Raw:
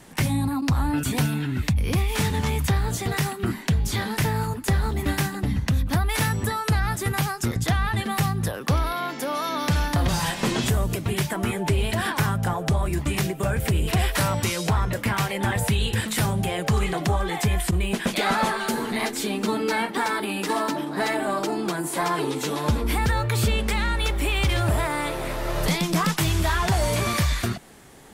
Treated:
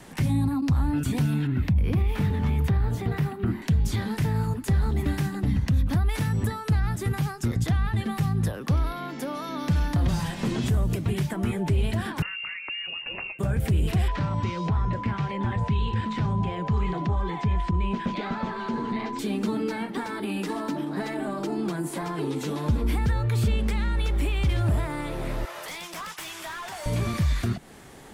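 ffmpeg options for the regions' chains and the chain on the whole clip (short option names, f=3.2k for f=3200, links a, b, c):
-filter_complex "[0:a]asettb=1/sr,asplit=3[a][b][c];[a]atrim=end=1.474[d];[b]atrim=start=1.47:end=3.62,asetpts=PTS-STARTPTS,afade=t=in:d=0.004:c=qsin,afade=t=out:st=2.146:d=0.004:c=qsin,equalizer=f=7.4k:t=o:w=1.9:g=-13,bandreject=f=88.08:t=h:w=4,bandreject=f=176.16:t=h:w=4,bandreject=f=264.24:t=h:w=4,bandreject=f=352.32:t=h:w=4,bandreject=f=440.4:t=h:w=4,bandreject=f=528.48:t=h:w=4,bandreject=f=616.56:t=h:w=4,bandreject=f=704.64:t=h:w=4,bandreject=f=792.72:t=h:w=4,bandreject=f=880.8:t=h:w=4,bandreject=f=968.88:t=h:w=4,bandreject=f=1.05696k:t=h:w=4[e];[c]atrim=start=3.616[f];[d][e]acrossfade=d=0.004:c1=hsin:c2=qsin[g];[g][f]acrossfade=d=0.004:c1=qsin:c2=hsin,asettb=1/sr,asplit=3[h][i][j];[h]atrim=end=12.224[k];[i]atrim=start=12.22:end=13.39,asetpts=PTS-STARTPTS,afade=t=in:d=0.004:c=qsin,afade=t=out:st=1.166:d=0.004:c=qsin,equalizer=f=320:t=o:w=0.38:g=-5,lowpass=f=2.5k:t=q:w=0.5098,lowpass=f=2.5k:t=q:w=0.6013,lowpass=f=2.5k:t=q:w=0.9,lowpass=f=2.5k:t=q:w=2.563,afreqshift=-2900[l];[j]atrim=start=13.386[m];[k][l]acrossfade=d=0.004:c1=hsin:c2=qsin[n];[n][m]acrossfade=d=0.004:c1=qsin:c2=hsin,asettb=1/sr,asplit=3[o][p][q];[o]atrim=end=14.084[r];[p]atrim=start=14.08:end=19.19,asetpts=PTS-STARTPTS,afade=t=in:d=0.004:c=qsin,afade=t=out:st=5.106:d=0.004:c=qsin,acrossover=split=4500[s][t];[t]acompressor=threshold=-45dB:ratio=4:attack=1:release=60[u];[s][u]amix=inputs=2:normalize=0,aeval=exprs='val(0)+0.0562*sin(2*PI*1000*n/s)':c=same,lowpass=f=7.2k:w=0.5412,lowpass=f=7.2k:w=1.3066[v];[q]atrim=start=19.186[w];[r][v]acrossfade=d=0.004:c1=hsin:c2=qsin[x];[x][w]acrossfade=d=0.004:c1=qsin:c2=hsin,asettb=1/sr,asplit=3[y][z][aa];[y]atrim=end=25.454[ab];[z]atrim=start=25.45:end=26.86,asetpts=PTS-STARTPTS,afade=t=in:d=0.004:c=qsin,afade=t=out:st=1.406:d=0.004:c=qsin,highpass=860,volume=26.5dB,asoftclip=hard,volume=-26.5dB,equalizer=f=4.2k:t=o:w=0.3:g=-3.5[ac];[aa]atrim=start=26.856[ad];[ab][ac]acrossfade=d=0.004:c1=hsin:c2=qsin[ae];[ae][ad]acrossfade=d=0.004:c1=qsin:c2=hsin,highshelf=f=6k:g=-4.5,alimiter=limit=-17dB:level=0:latency=1,acrossover=split=330[af][ag];[ag]acompressor=threshold=-43dB:ratio=2[ah];[af][ah]amix=inputs=2:normalize=0,volume=2dB"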